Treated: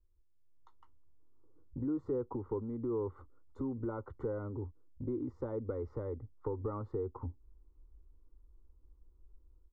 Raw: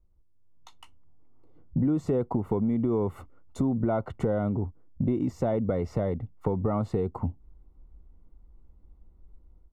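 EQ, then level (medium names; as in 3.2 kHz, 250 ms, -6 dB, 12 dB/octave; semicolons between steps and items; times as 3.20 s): Bessel low-pass 1.5 kHz, order 2; static phaser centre 680 Hz, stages 6; -6.5 dB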